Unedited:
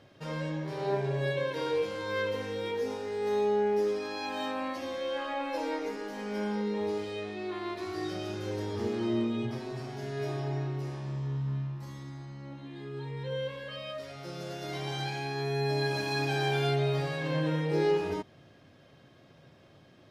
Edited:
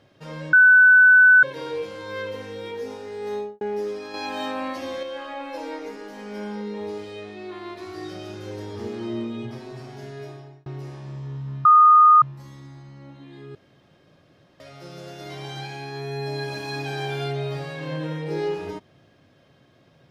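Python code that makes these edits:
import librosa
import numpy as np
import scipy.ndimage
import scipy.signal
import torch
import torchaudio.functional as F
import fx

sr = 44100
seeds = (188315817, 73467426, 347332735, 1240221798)

y = fx.studio_fade_out(x, sr, start_s=3.33, length_s=0.28)
y = fx.edit(y, sr, fx.bleep(start_s=0.53, length_s=0.9, hz=1500.0, db=-9.0),
    fx.clip_gain(start_s=4.14, length_s=0.89, db=5.0),
    fx.fade_out_span(start_s=10.03, length_s=0.63),
    fx.insert_tone(at_s=11.65, length_s=0.57, hz=1230.0, db=-9.0),
    fx.room_tone_fill(start_s=12.98, length_s=1.05), tone=tone)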